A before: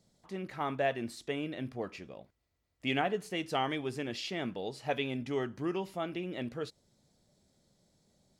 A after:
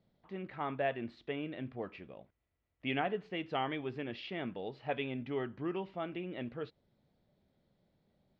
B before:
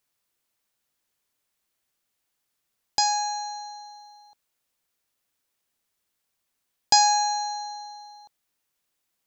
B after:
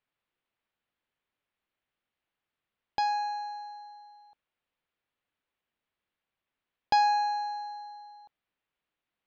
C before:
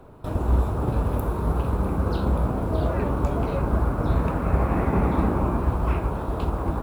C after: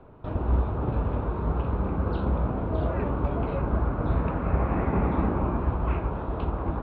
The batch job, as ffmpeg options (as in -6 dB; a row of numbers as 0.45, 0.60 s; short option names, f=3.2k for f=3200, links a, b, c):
-af "lowpass=f=3.3k:w=0.5412,lowpass=f=3.3k:w=1.3066,volume=-3dB"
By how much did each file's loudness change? -3.0, -6.5, -3.0 LU